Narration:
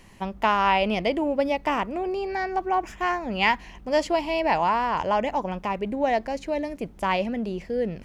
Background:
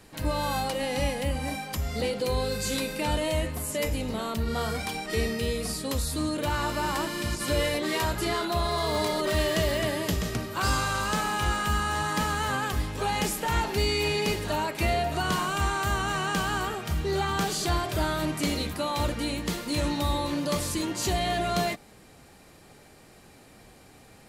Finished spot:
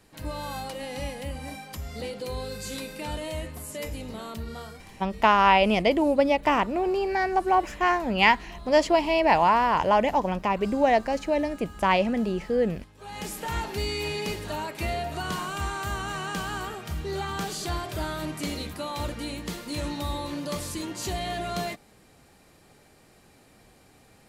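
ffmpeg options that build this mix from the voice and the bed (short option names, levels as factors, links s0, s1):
-filter_complex "[0:a]adelay=4800,volume=1.33[s0];[1:a]volume=3.35,afade=t=out:st=4.37:d=0.51:silence=0.188365,afade=t=in:st=12.98:d=0.43:silence=0.149624[s1];[s0][s1]amix=inputs=2:normalize=0"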